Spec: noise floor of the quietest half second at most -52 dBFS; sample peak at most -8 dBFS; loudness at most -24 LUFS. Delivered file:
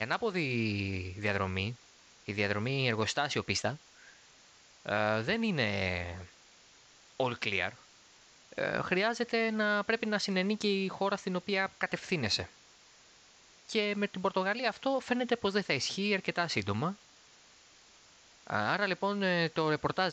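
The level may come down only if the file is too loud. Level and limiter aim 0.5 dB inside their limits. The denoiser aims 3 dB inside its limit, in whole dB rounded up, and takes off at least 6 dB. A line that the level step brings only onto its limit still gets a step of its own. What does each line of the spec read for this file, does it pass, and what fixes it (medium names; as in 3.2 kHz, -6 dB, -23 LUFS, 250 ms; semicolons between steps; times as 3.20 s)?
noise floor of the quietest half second -60 dBFS: pass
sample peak -15.5 dBFS: pass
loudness -32.0 LUFS: pass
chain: none needed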